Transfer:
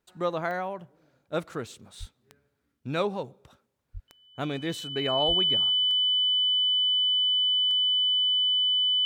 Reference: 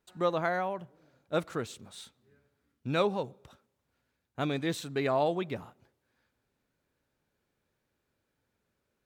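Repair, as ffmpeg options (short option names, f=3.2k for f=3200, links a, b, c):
-filter_complex "[0:a]adeclick=t=4,bandreject=f=3k:w=30,asplit=3[a][b][c];[a]afade=t=out:st=1.99:d=0.02[d];[b]highpass=f=140:w=0.5412,highpass=f=140:w=1.3066,afade=t=in:st=1.99:d=0.02,afade=t=out:st=2.11:d=0.02[e];[c]afade=t=in:st=2.11:d=0.02[f];[d][e][f]amix=inputs=3:normalize=0,asplit=3[g][h][i];[g]afade=t=out:st=3.93:d=0.02[j];[h]highpass=f=140:w=0.5412,highpass=f=140:w=1.3066,afade=t=in:st=3.93:d=0.02,afade=t=out:st=4.05:d=0.02[k];[i]afade=t=in:st=4.05:d=0.02[l];[j][k][l]amix=inputs=3:normalize=0,asplit=3[m][n][o];[m]afade=t=out:st=5.27:d=0.02[p];[n]highpass=f=140:w=0.5412,highpass=f=140:w=1.3066,afade=t=in:st=5.27:d=0.02,afade=t=out:st=5.39:d=0.02[q];[o]afade=t=in:st=5.39:d=0.02[r];[p][q][r]amix=inputs=3:normalize=0"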